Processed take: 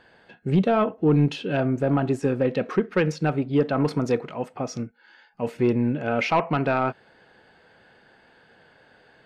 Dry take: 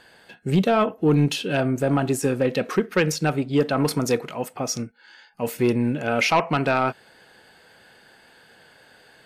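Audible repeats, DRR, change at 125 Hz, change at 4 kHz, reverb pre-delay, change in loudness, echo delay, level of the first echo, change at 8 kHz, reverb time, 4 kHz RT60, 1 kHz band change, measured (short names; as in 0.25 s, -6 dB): none, none, -0.5 dB, -8.0 dB, none, -1.5 dB, none, none, -14.0 dB, none, none, -2.0 dB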